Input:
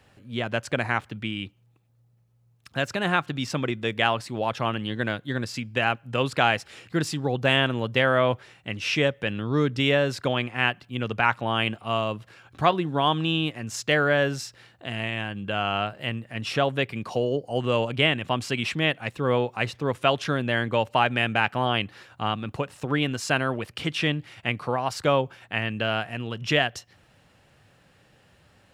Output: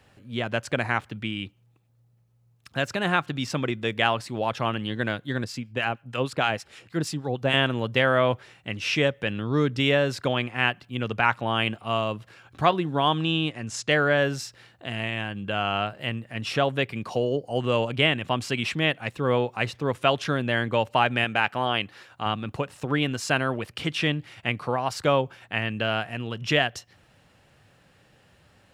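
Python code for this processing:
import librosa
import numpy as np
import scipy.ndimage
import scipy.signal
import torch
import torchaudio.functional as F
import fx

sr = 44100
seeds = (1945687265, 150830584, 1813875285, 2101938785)

y = fx.harmonic_tremolo(x, sr, hz=6.4, depth_pct=70, crossover_hz=990.0, at=(5.44, 7.54))
y = fx.lowpass(y, sr, hz=10000.0, slope=24, at=(13.22, 14.17))
y = fx.low_shelf(y, sr, hz=250.0, db=-6.5, at=(21.24, 22.26))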